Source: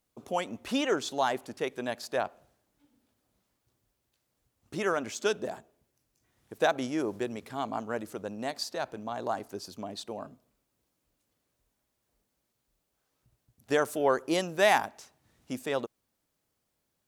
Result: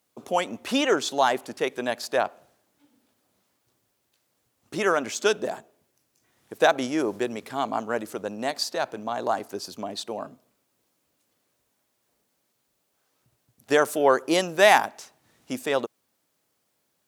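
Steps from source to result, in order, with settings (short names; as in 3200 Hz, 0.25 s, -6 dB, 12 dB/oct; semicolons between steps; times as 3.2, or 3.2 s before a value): HPF 86 Hz; low shelf 170 Hz -8.5 dB; gain +7 dB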